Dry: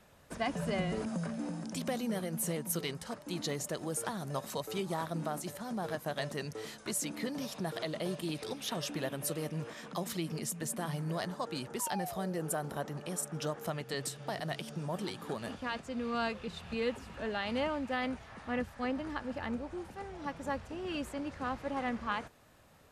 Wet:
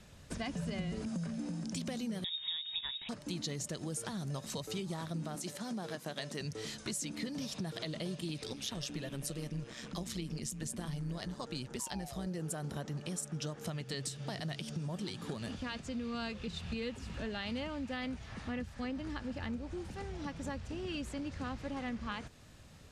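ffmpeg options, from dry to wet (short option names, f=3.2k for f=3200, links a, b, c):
-filter_complex "[0:a]asettb=1/sr,asplit=3[a][b][c];[a]atrim=end=2.244[d];[b]atrim=start=2.24:end=3.09,asetpts=PTS-STARTPTS,afade=t=in:d=0.004:c=qsin,afade=t=out:st=0.846:d=0.004:c=qsin,lowpass=f=3.3k:t=q:w=0.5098,lowpass=f=3.3k:t=q:w=0.6013,lowpass=f=3.3k:t=q:w=0.9,lowpass=f=3.3k:t=q:w=2.563,afreqshift=-3900[e];[c]atrim=start=3.086[f];[d][e]acrossfade=d=0.004:c1=hsin:c2=qsin[g];[g][f]acrossfade=d=0.004:c1=qsin:c2=hsin,asettb=1/sr,asplit=3[h][i][j];[h]atrim=end=5.354[k];[i]atrim=start=5.35:end=6.41,asetpts=PTS-STARTPTS,afade=t=in:d=0.004:c=qsin,afade=t=out:st=1.056:d=0.004:c=qsin,highpass=210[l];[j]atrim=start=6.406[m];[k][l]acrossfade=d=0.004:c1=hsin:c2=qsin[n];[n][m]acrossfade=d=0.004:c1=qsin:c2=hsin,asettb=1/sr,asplit=3[o][p][q];[o]atrim=end=8.474[r];[p]atrim=start=8.47:end=12.27,asetpts=PTS-STARTPTS,afade=t=in:d=0.004:c=qsin,afade=t=out:st=3.796:d=0.004:c=qsin,tremolo=f=130:d=0.571[s];[q]atrim=start=12.266[t];[r][s]acrossfade=d=0.004:c1=hsin:c2=qsin[u];[u][t]acrossfade=d=0.004:c1=qsin:c2=hsin,lowpass=7k,equalizer=f=860:w=0.36:g=-13,acompressor=threshold=-49dB:ratio=3,volume=11dB"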